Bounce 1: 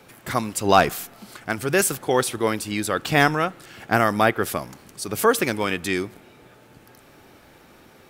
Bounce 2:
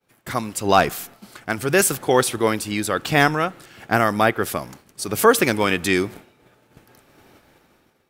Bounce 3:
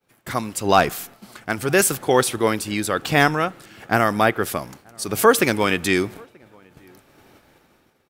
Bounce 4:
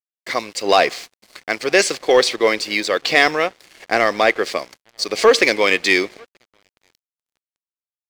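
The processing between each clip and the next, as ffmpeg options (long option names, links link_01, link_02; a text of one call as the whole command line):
ffmpeg -i in.wav -af "agate=range=-33dB:threshold=-39dB:ratio=3:detection=peak,dynaudnorm=framelen=200:gausssize=7:maxgain=15dB,volume=-1dB" out.wav
ffmpeg -i in.wav -filter_complex "[0:a]asplit=2[link_01][link_02];[link_02]adelay=932.9,volume=-29dB,highshelf=frequency=4000:gain=-21[link_03];[link_01][link_03]amix=inputs=2:normalize=0" out.wav
ffmpeg -i in.wav -af "highpass=420,equalizer=frequency=500:width_type=q:width=4:gain=4,equalizer=frequency=870:width_type=q:width=4:gain=-6,equalizer=frequency=1400:width_type=q:width=4:gain=-9,equalizer=frequency=2100:width_type=q:width=4:gain=7,equalizer=frequency=4500:width_type=q:width=4:gain=8,lowpass=frequency=6600:width=0.5412,lowpass=frequency=6600:width=1.3066,acontrast=84,aeval=exprs='sgn(val(0))*max(abs(val(0))-0.0141,0)':channel_layout=same,volume=-1dB" out.wav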